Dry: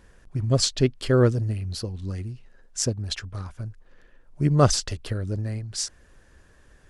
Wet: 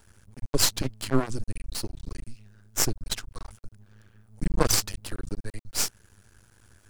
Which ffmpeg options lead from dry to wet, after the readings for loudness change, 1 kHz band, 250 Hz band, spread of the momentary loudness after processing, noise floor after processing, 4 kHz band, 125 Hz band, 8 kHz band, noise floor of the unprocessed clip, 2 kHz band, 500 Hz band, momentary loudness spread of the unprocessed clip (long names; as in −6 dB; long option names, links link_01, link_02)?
−3.5 dB, −3.5 dB, −6.0 dB, 20 LU, −62 dBFS, −0.5 dB, −11.0 dB, +2.0 dB, −56 dBFS, +0.5 dB, −8.0 dB, 17 LU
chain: -af "afreqshift=-120,aemphasis=mode=production:type=50fm,aeval=exprs='max(val(0),0)':channel_layout=same"